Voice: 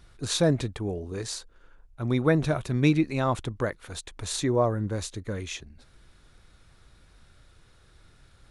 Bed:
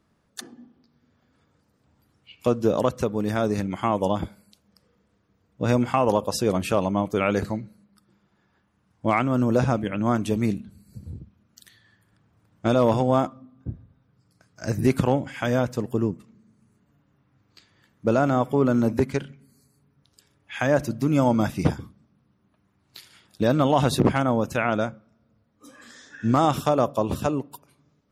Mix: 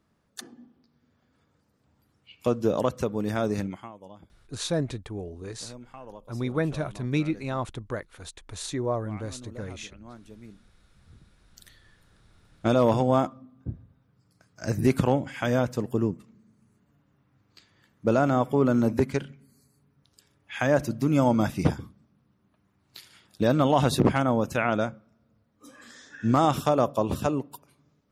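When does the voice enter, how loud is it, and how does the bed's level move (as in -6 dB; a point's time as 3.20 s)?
4.30 s, -4.5 dB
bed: 3.67 s -3 dB
3.93 s -23.5 dB
10.94 s -23.5 dB
11.59 s -1.5 dB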